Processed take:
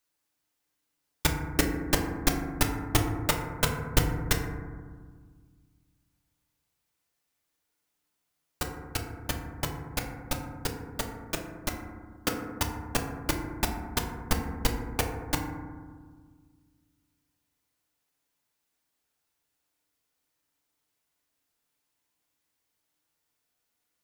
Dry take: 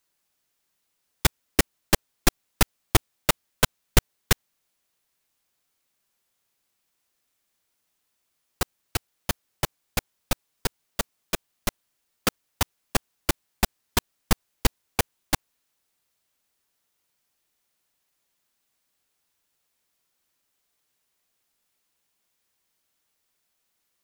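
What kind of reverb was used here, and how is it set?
FDN reverb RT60 1.6 s, low-frequency decay 1.5×, high-frequency decay 0.25×, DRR 1.5 dB; trim -5.5 dB

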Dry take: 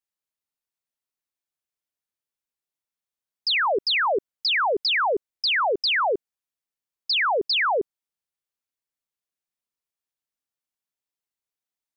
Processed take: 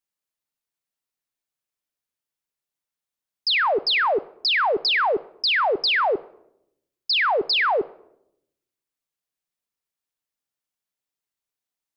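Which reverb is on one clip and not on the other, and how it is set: simulated room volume 2000 m³, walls furnished, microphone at 0.42 m; trim +1.5 dB

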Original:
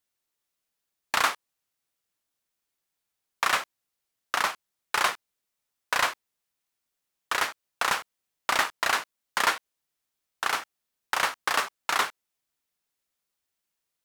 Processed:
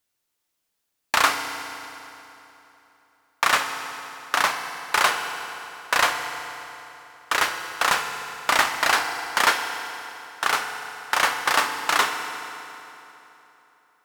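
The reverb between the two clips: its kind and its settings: FDN reverb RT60 3.3 s, high-frequency decay 0.8×, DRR 5 dB; trim +4.5 dB

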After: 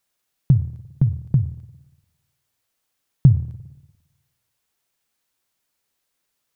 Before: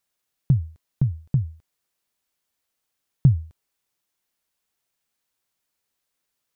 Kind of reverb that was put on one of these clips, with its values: spring tank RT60 1.1 s, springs 50/58 ms, DRR 14 dB; trim +3.5 dB

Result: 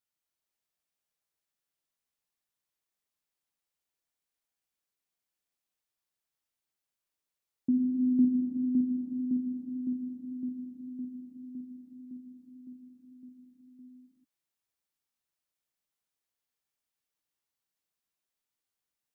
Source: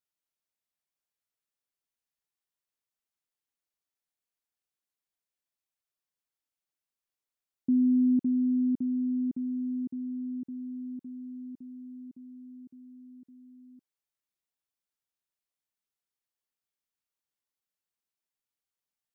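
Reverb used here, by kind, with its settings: gated-style reverb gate 470 ms flat, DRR 1.5 dB

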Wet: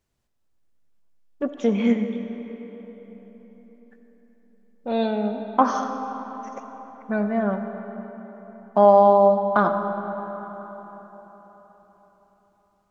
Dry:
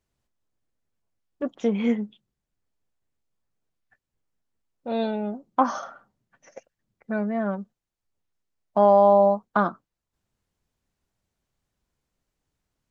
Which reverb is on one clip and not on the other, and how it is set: algorithmic reverb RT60 4.5 s, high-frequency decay 0.6×, pre-delay 25 ms, DRR 6.5 dB; trim +2.5 dB

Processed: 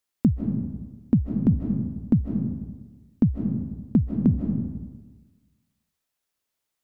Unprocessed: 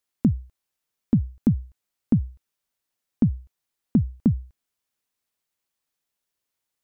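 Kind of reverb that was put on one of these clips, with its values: algorithmic reverb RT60 1.3 s, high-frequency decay 0.5×, pre-delay 115 ms, DRR 3 dB

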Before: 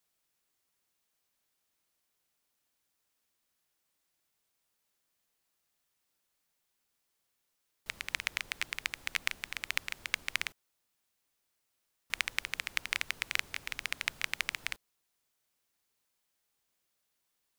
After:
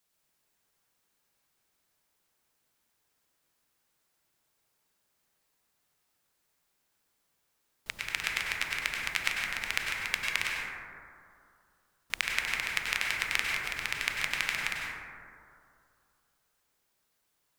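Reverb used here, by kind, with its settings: plate-style reverb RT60 2.4 s, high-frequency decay 0.25×, pre-delay 85 ms, DRR -2.5 dB; trim +1.5 dB

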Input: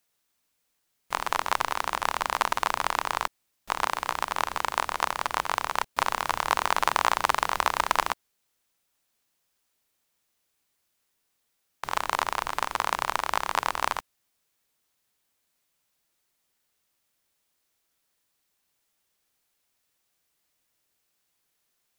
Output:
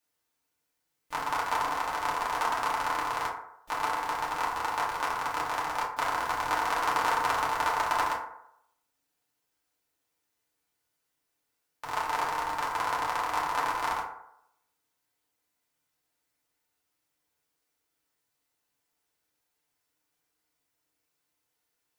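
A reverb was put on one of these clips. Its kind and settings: FDN reverb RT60 0.76 s, low-frequency decay 0.75×, high-frequency decay 0.4×, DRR -6 dB; trim -9.5 dB

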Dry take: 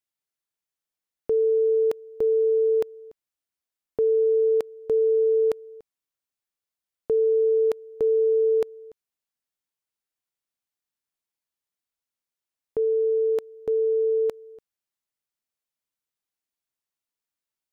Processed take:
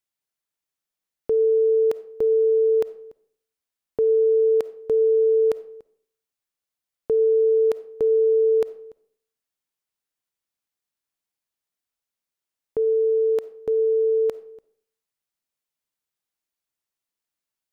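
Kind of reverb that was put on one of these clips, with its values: algorithmic reverb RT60 0.56 s, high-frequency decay 0.7×, pre-delay 10 ms, DRR 16 dB; trim +1.5 dB

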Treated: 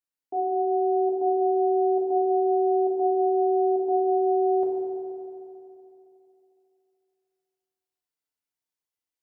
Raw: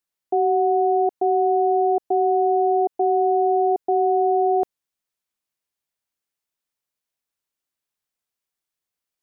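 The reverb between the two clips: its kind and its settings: FDN reverb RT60 2.9 s, high-frequency decay 0.9×, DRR -4 dB; trim -11.5 dB

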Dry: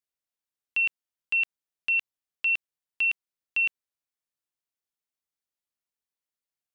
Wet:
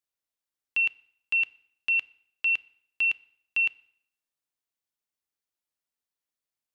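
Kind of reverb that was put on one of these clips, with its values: FDN reverb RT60 0.69 s, low-frequency decay 0.95×, high-frequency decay 0.9×, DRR 17.5 dB

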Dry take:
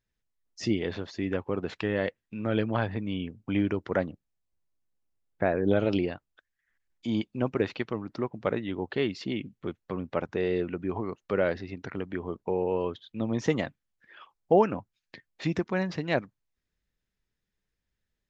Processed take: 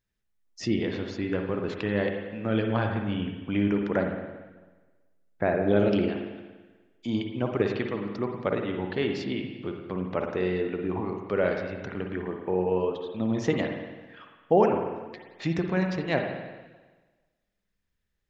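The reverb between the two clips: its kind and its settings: spring tank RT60 1.3 s, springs 49/54 ms, chirp 40 ms, DRR 3 dB

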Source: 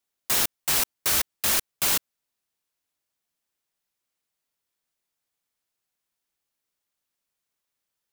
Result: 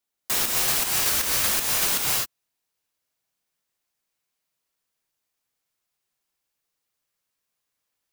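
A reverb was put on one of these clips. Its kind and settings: gated-style reverb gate 290 ms rising, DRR -2 dB; trim -1.5 dB

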